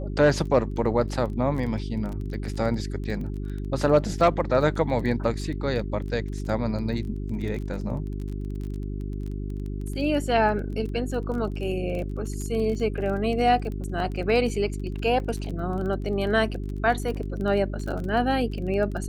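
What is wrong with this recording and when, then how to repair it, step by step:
crackle 22/s -32 dBFS
hum 50 Hz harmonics 8 -31 dBFS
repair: de-click; de-hum 50 Hz, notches 8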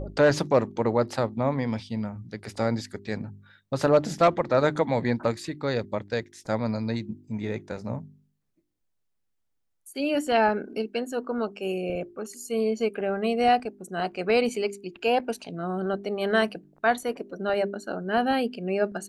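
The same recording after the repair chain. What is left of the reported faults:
none

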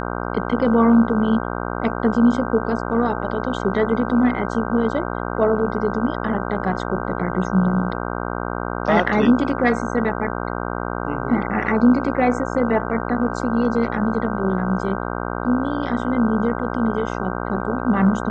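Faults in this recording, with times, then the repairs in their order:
buzz 60 Hz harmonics 26 -26 dBFS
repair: de-hum 60 Hz, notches 26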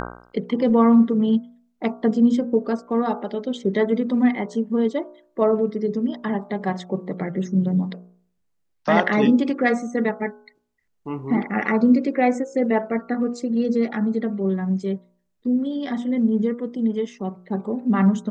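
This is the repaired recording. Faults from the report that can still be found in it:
none

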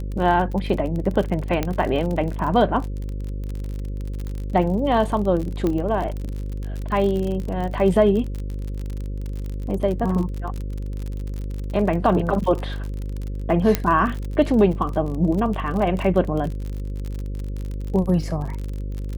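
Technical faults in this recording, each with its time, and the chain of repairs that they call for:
buzz 50 Hz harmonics 11 -28 dBFS
crackle 43/s -27 dBFS
1.63 pop -9 dBFS
5.67 pop -12 dBFS
13.75 pop -4 dBFS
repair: de-click; de-hum 50 Hz, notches 11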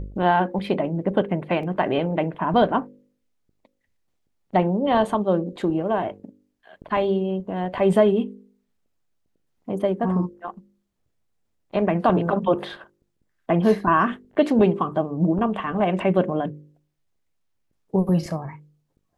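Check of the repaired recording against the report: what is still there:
1.63 pop

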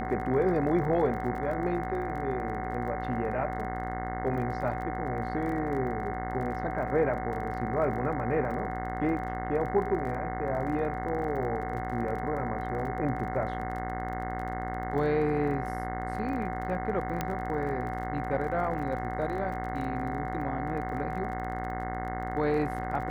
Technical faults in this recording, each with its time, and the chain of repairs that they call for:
buzz 60 Hz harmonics 36 -36 dBFS
crackle 23/s -38 dBFS
tone 750 Hz -35 dBFS
17.21 pop -15 dBFS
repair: de-click; de-hum 60 Hz, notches 36; notch 750 Hz, Q 30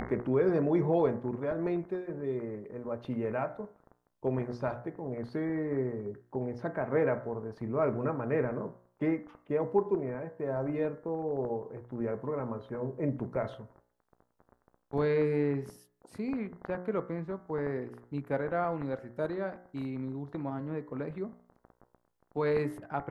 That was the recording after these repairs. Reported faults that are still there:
17.21 pop

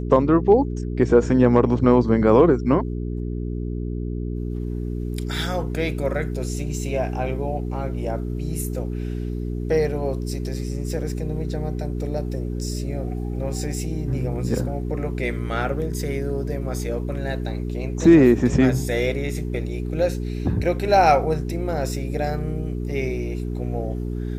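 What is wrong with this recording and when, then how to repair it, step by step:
hum 60 Hz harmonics 7 -27 dBFS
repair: de-hum 60 Hz, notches 7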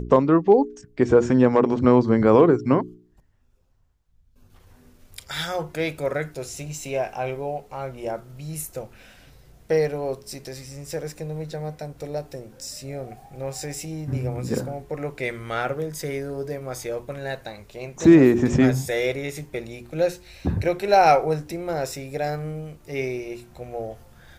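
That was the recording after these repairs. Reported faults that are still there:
none

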